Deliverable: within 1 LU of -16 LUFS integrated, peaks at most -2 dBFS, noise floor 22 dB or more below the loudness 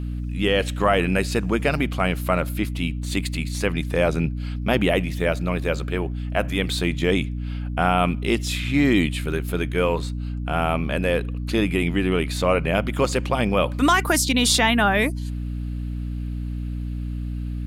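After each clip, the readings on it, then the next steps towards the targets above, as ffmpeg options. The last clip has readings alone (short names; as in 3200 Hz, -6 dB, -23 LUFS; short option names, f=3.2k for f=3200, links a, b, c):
hum 60 Hz; harmonics up to 300 Hz; hum level -25 dBFS; loudness -23.0 LUFS; peak -5.5 dBFS; loudness target -16.0 LUFS
-> -af "bandreject=f=60:t=h:w=6,bandreject=f=120:t=h:w=6,bandreject=f=180:t=h:w=6,bandreject=f=240:t=h:w=6,bandreject=f=300:t=h:w=6"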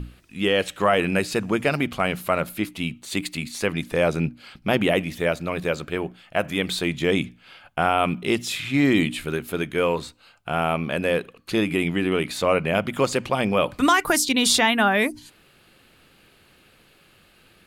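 hum none; loudness -23.0 LUFS; peak -6.0 dBFS; loudness target -16.0 LUFS
-> -af "volume=7dB,alimiter=limit=-2dB:level=0:latency=1"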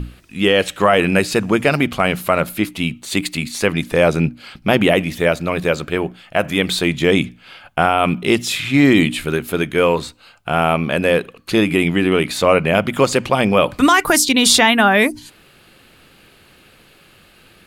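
loudness -16.5 LUFS; peak -2.0 dBFS; noise floor -50 dBFS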